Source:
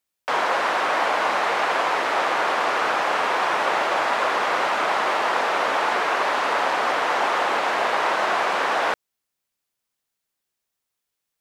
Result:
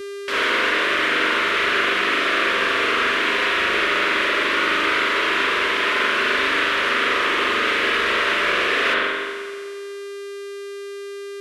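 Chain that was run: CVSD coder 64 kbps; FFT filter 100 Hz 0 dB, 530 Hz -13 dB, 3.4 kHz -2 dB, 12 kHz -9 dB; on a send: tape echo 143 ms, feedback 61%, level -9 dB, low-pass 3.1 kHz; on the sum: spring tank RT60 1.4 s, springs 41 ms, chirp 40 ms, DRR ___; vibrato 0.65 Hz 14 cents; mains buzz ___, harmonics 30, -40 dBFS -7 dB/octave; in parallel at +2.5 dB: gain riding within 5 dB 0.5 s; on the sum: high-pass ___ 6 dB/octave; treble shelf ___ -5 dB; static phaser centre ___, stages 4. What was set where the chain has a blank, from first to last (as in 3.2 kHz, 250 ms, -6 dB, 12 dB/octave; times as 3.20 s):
-7 dB, 400 Hz, 72 Hz, 4.6 kHz, 330 Hz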